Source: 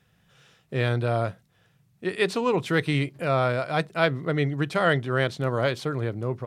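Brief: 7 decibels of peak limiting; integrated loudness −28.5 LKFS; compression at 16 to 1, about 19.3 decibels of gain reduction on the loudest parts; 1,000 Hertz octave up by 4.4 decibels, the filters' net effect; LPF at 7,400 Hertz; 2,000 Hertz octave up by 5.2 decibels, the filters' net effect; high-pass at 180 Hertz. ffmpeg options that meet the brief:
ffmpeg -i in.wav -af "highpass=180,lowpass=7400,equalizer=frequency=1000:width_type=o:gain=4.5,equalizer=frequency=2000:width_type=o:gain=5,acompressor=threshold=-32dB:ratio=16,volume=10.5dB,alimiter=limit=-15dB:level=0:latency=1" out.wav

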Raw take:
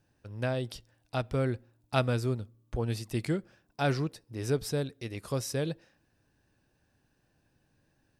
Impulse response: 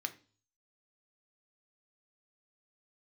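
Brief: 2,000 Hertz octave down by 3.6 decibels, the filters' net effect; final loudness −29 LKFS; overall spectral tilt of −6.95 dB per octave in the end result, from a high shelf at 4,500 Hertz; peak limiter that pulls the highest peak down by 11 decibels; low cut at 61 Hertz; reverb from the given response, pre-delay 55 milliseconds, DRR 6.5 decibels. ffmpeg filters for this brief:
-filter_complex "[0:a]highpass=61,equalizer=frequency=2000:width_type=o:gain=-3.5,highshelf=frequency=4500:gain=-9,alimiter=limit=-23.5dB:level=0:latency=1,asplit=2[link_01][link_02];[1:a]atrim=start_sample=2205,adelay=55[link_03];[link_02][link_03]afir=irnorm=-1:irlink=0,volume=-7dB[link_04];[link_01][link_04]amix=inputs=2:normalize=0,volume=6.5dB"

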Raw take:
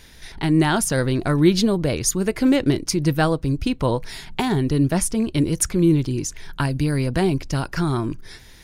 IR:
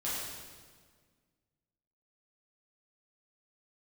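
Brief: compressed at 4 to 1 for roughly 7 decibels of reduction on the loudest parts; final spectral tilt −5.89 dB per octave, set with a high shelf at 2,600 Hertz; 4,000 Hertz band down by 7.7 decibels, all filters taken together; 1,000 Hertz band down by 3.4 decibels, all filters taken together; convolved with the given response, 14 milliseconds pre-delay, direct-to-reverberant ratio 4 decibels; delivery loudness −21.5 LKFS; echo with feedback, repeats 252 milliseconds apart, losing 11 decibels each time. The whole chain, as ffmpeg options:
-filter_complex "[0:a]equalizer=frequency=1000:width_type=o:gain=-3.5,highshelf=frequency=2600:gain=-5.5,equalizer=frequency=4000:width_type=o:gain=-5,acompressor=threshold=-20dB:ratio=4,aecho=1:1:252|504|756:0.282|0.0789|0.0221,asplit=2[link_01][link_02];[1:a]atrim=start_sample=2205,adelay=14[link_03];[link_02][link_03]afir=irnorm=-1:irlink=0,volume=-9dB[link_04];[link_01][link_04]amix=inputs=2:normalize=0,volume=2dB"

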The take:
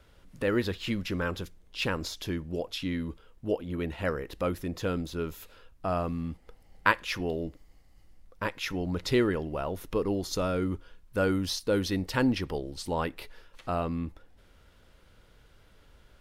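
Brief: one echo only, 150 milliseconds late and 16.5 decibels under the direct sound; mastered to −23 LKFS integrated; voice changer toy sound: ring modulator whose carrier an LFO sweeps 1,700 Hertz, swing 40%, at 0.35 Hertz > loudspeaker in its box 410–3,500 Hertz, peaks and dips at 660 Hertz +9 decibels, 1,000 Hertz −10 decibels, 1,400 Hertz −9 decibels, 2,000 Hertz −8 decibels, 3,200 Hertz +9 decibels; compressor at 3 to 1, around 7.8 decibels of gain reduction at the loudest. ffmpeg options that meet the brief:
ffmpeg -i in.wav -af "acompressor=threshold=-30dB:ratio=3,aecho=1:1:150:0.15,aeval=exprs='val(0)*sin(2*PI*1700*n/s+1700*0.4/0.35*sin(2*PI*0.35*n/s))':channel_layout=same,highpass=410,equalizer=frequency=660:width_type=q:width=4:gain=9,equalizer=frequency=1000:width_type=q:width=4:gain=-10,equalizer=frequency=1400:width_type=q:width=4:gain=-9,equalizer=frequency=2000:width_type=q:width=4:gain=-8,equalizer=frequency=3200:width_type=q:width=4:gain=9,lowpass=frequency=3500:width=0.5412,lowpass=frequency=3500:width=1.3066,volume=15.5dB" out.wav

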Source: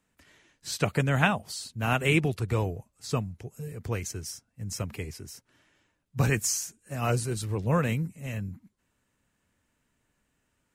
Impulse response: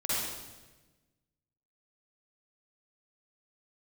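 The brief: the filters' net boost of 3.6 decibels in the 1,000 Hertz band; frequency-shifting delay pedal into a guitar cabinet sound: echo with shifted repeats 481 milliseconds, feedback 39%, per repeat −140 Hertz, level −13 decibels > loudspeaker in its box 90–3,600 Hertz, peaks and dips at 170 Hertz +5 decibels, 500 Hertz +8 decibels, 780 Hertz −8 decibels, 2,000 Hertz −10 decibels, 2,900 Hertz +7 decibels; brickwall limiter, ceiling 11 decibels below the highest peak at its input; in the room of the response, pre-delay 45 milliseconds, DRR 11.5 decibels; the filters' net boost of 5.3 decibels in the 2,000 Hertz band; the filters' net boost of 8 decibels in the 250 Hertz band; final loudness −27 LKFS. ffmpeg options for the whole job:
-filter_complex "[0:a]equalizer=frequency=250:width_type=o:gain=9,equalizer=frequency=1000:width_type=o:gain=5,equalizer=frequency=2000:width_type=o:gain=8,alimiter=limit=-13.5dB:level=0:latency=1,asplit=2[link_01][link_02];[1:a]atrim=start_sample=2205,adelay=45[link_03];[link_02][link_03]afir=irnorm=-1:irlink=0,volume=-19.5dB[link_04];[link_01][link_04]amix=inputs=2:normalize=0,asplit=5[link_05][link_06][link_07][link_08][link_09];[link_06]adelay=481,afreqshift=-140,volume=-13dB[link_10];[link_07]adelay=962,afreqshift=-280,volume=-21.2dB[link_11];[link_08]adelay=1443,afreqshift=-420,volume=-29.4dB[link_12];[link_09]adelay=1924,afreqshift=-560,volume=-37.5dB[link_13];[link_05][link_10][link_11][link_12][link_13]amix=inputs=5:normalize=0,highpass=90,equalizer=frequency=170:width_type=q:width=4:gain=5,equalizer=frequency=500:width_type=q:width=4:gain=8,equalizer=frequency=780:width_type=q:width=4:gain=-8,equalizer=frequency=2000:width_type=q:width=4:gain=-10,equalizer=frequency=2900:width_type=q:width=4:gain=7,lowpass=frequency=3600:width=0.5412,lowpass=frequency=3600:width=1.3066,volume=-0.5dB"

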